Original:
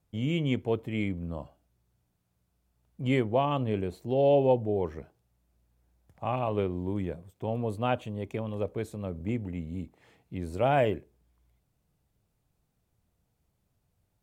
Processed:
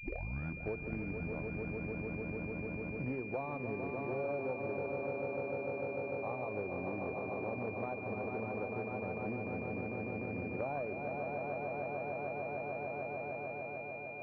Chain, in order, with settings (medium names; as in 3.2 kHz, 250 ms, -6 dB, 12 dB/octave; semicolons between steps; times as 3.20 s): tape start-up on the opening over 0.74 s; in parallel at -4 dB: saturation -23 dBFS, distortion -12 dB; on the sum: high-pass 60 Hz 6 dB/octave; bass shelf 290 Hz -7.5 dB; on a send: echo with a slow build-up 149 ms, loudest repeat 5, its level -9 dB; on the sum: compression 6:1, threshold -36 dBFS, peak gain reduction 17.5 dB; class-D stage that switches slowly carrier 2.4 kHz